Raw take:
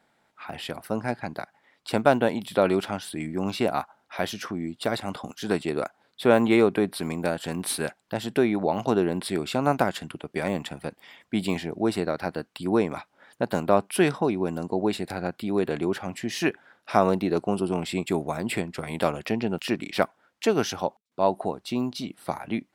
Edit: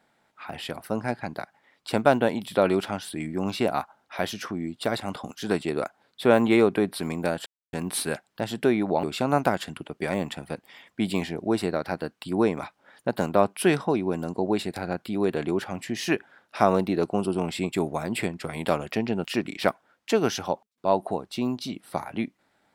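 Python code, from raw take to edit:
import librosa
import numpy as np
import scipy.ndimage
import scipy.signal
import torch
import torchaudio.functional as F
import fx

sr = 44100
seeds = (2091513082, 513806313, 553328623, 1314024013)

y = fx.edit(x, sr, fx.insert_silence(at_s=7.46, length_s=0.27),
    fx.cut(start_s=8.76, length_s=0.61), tone=tone)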